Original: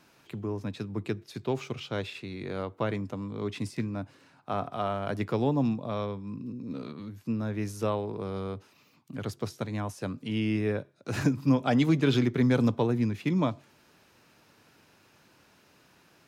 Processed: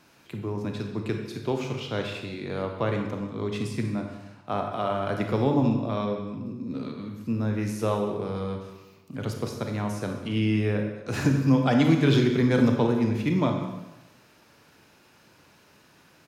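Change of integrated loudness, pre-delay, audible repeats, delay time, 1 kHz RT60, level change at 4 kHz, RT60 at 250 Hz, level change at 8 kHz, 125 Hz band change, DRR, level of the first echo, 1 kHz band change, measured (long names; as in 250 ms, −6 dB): +3.5 dB, 28 ms, 1, 189 ms, 1.0 s, +3.5 dB, 1.0 s, +3.5 dB, +4.0 dB, 3.0 dB, −17.0 dB, +3.5 dB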